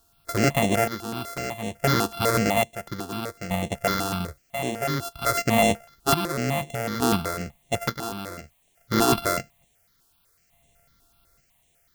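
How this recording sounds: a buzz of ramps at a fixed pitch in blocks of 64 samples; chopped level 0.57 Hz, depth 65%, duty 50%; a quantiser's noise floor 12-bit, dither triangular; notches that jump at a steady rate 8 Hz 570–4900 Hz

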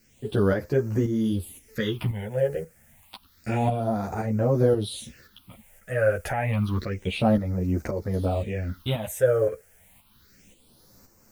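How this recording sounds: a quantiser's noise floor 10-bit, dither triangular; phasing stages 6, 0.29 Hz, lowest notch 250–3300 Hz; tremolo saw up 1.9 Hz, depth 55%; a shimmering, thickened sound

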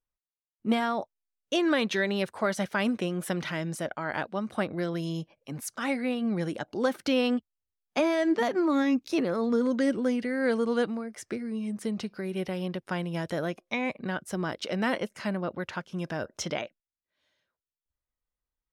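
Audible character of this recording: noise floor -94 dBFS; spectral tilt -4.5 dB/octave

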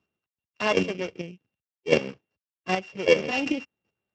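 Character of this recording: a buzz of ramps at a fixed pitch in blocks of 16 samples; chopped level 2.6 Hz, depth 60%, duty 15%; Speex

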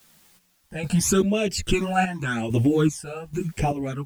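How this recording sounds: phasing stages 12, 0.88 Hz, lowest notch 340–1400 Hz; a quantiser's noise floor 10-bit, dither triangular; chopped level 1.2 Hz, depth 65%, duty 45%; a shimmering, thickened sound

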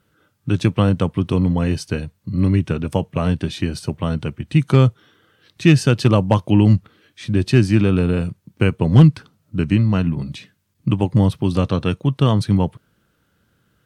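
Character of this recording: noise floor -66 dBFS; spectral tilt -8.0 dB/octave

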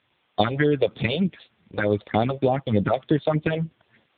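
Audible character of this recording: phasing stages 4, 3.3 Hz, lowest notch 210–2100 Hz; a quantiser's noise floor 10-bit, dither triangular; AMR-NB

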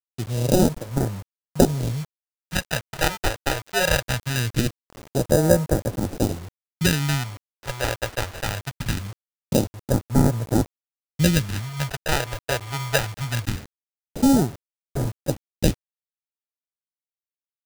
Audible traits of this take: aliases and images of a low sample rate 1.1 kHz, jitter 0%; phasing stages 2, 0.22 Hz, lowest notch 200–2700 Hz; a quantiser's noise floor 8-bit, dither none

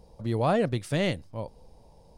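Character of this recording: noise floor -56 dBFS; spectral tilt -5.5 dB/octave

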